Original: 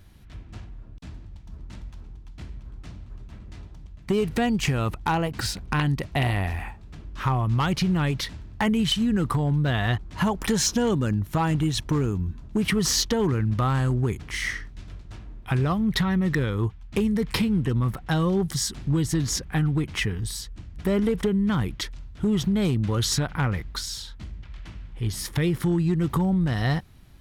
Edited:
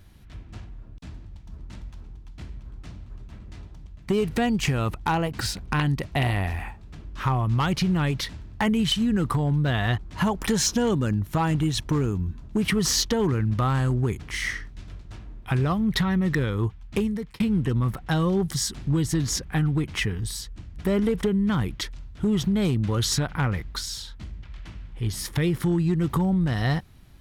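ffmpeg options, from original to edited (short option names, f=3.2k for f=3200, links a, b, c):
-filter_complex "[0:a]asplit=2[a][b];[a]atrim=end=17.4,asetpts=PTS-STARTPTS,afade=t=out:st=16.96:d=0.44[c];[b]atrim=start=17.4,asetpts=PTS-STARTPTS,afade=t=in:d=0.004:c=hsin[d];[c][d]concat=n=2:v=0:a=1"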